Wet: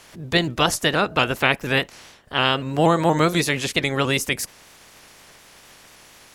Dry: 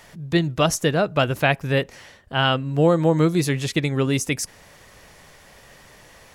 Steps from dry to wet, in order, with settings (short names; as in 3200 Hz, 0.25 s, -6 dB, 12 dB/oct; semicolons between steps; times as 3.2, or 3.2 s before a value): spectral limiter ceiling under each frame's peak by 15 dB; shaped vibrato saw up 4.2 Hz, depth 100 cents